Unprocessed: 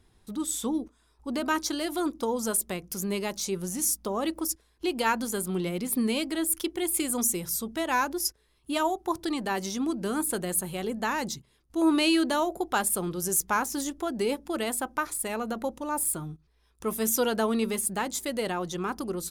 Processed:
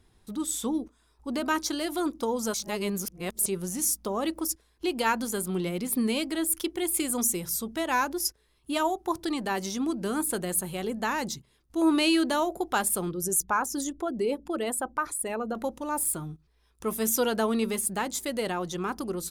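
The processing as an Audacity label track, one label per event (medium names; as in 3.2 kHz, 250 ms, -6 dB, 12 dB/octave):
2.540000	3.460000	reverse
13.110000	15.550000	resonances exaggerated exponent 1.5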